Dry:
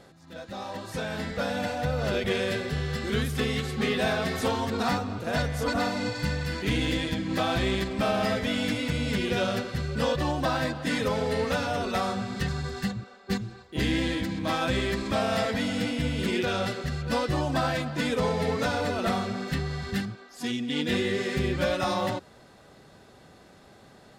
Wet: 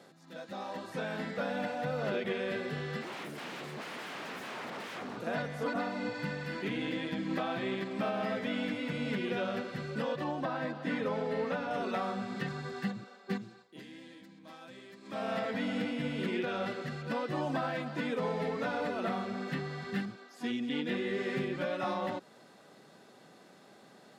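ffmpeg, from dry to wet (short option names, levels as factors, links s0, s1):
-filter_complex "[0:a]asettb=1/sr,asplit=3[s0][s1][s2];[s0]atrim=end=3.014[s3];[s1]atrim=start=3.01:end=5.17,asetpts=PTS-STARTPTS,afade=t=in:d=0.004:c=qsin,afade=t=out:st=2.156:d=0.004:c=qsin,aeval=exprs='0.0266*(abs(mod(val(0)/0.0266+3,4)-2)-1)':c=same[s4];[s2]atrim=start=5.166[s5];[s3][s4]acrossfade=d=0.004:c1=hsin:c2=qsin[s6];[s6][s5]acrossfade=d=0.004:c1=qsin:c2=hsin,asettb=1/sr,asplit=3[s7][s8][s9];[s7]atrim=end=10.244[s10];[s8]atrim=start=10.24:end=11.71,asetpts=PTS-STARTPTS,afade=t=in:d=0.004:c=qsin,afade=t=out:st=1.466:d=0.004:c=qsin,lowpass=f=2500:p=1[s11];[s9]atrim=start=11.706[s12];[s10][s11]acrossfade=d=0.004:c1=hsin:c2=qsin[s13];[s13][s12]acrossfade=d=0.004:c1=qsin:c2=hsin,asplit=3[s14][s15][s16];[s14]atrim=end=13.83,asetpts=PTS-STARTPTS,afade=t=out:st=13.37:d=0.46:silence=0.105925[s17];[s15]atrim=start=13.83:end=15.01,asetpts=PTS-STARTPTS,volume=0.106[s18];[s16]atrim=start=15.01,asetpts=PTS-STARTPTS,afade=t=in:d=0.46:silence=0.105925[s19];[s17][s18][s19]concat=n=3:v=0:a=1,acrossover=split=3200[s20][s21];[s21]acompressor=threshold=0.00224:ratio=4:attack=1:release=60[s22];[s20][s22]amix=inputs=2:normalize=0,highpass=f=160:w=0.5412,highpass=f=160:w=1.3066,alimiter=limit=0.1:level=0:latency=1:release=403,volume=0.668"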